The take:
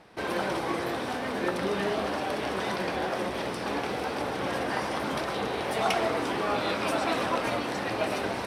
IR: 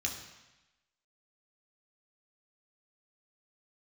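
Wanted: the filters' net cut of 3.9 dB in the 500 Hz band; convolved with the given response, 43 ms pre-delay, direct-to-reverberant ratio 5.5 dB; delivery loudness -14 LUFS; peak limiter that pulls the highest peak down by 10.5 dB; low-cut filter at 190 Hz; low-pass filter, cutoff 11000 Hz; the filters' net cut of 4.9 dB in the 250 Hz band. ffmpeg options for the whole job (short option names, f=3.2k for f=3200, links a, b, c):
-filter_complex "[0:a]highpass=190,lowpass=11k,equalizer=f=250:t=o:g=-3.5,equalizer=f=500:t=o:g=-4,alimiter=level_in=1dB:limit=-24dB:level=0:latency=1,volume=-1dB,asplit=2[a][b];[1:a]atrim=start_sample=2205,adelay=43[c];[b][c]afir=irnorm=-1:irlink=0,volume=-8.5dB[d];[a][d]amix=inputs=2:normalize=0,volume=19dB"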